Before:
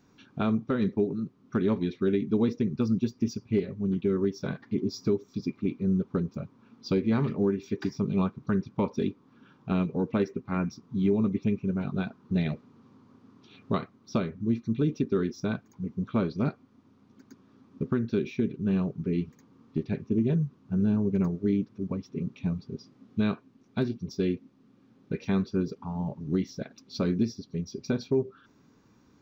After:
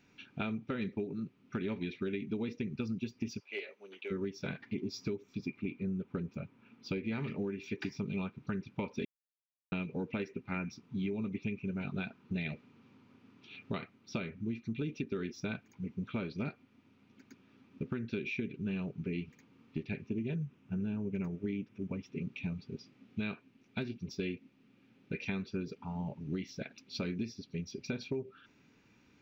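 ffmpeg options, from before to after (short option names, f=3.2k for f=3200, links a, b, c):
-filter_complex "[0:a]asplit=3[a][b][c];[a]afade=t=out:st=3.39:d=0.02[d];[b]highpass=f=510:w=0.5412,highpass=f=510:w=1.3066,afade=t=in:st=3.39:d=0.02,afade=t=out:st=4.1:d=0.02[e];[c]afade=t=in:st=4.1:d=0.02[f];[d][e][f]amix=inputs=3:normalize=0,asettb=1/sr,asplit=3[g][h][i];[g]atrim=end=5.164[j];[h]atrim=start=5.16:end=7.04,asetpts=PTS-STARTPTS,afade=t=in:d=0.004:c=qsin,afade=t=out:st=1.876:d=0.004:c=qsin,equalizer=f=4.6k:t=o:w=1.2:g=-5[k];[i]atrim=start=7.036[l];[j][k]acrossfade=d=0.004:c1=hsin:c2=qsin[m];[m][l]acrossfade=d=0.004:c1=qsin:c2=hsin,asettb=1/sr,asplit=3[n][o][p];[n]atrim=end=20.434[q];[o]atrim=start=20.43:end=22.09,asetpts=PTS-STARTPTS,afade=t=in:d=0.004:c=qsin,afade=t=out:st=1.656:d=0.004:c=qsin,equalizer=f=4.3k:w=4.4:g=-8.5[r];[p]atrim=start=22.086[s];[q][r]acrossfade=d=0.004:c1=hsin:c2=qsin[t];[t][s]acrossfade=d=0.004:c1=qsin:c2=hsin,asplit=3[u][v][w];[u]atrim=end=9.05,asetpts=PTS-STARTPTS,afade=t=out:st=9.046:d=0.004:c=hsin[x];[v]atrim=start=9.05:end=9.72,asetpts=PTS-STARTPTS,volume=0[y];[w]atrim=start=9.72,asetpts=PTS-STARTPTS,afade=t=in:d=0.004:c=hsin[z];[x][y][z]concat=n=3:v=0:a=1,equalizer=f=2.5k:w=1.6:g=14.5,bandreject=f=1.1k:w=8.6,acompressor=threshold=-27dB:ratio=6,volume=-5.5dB"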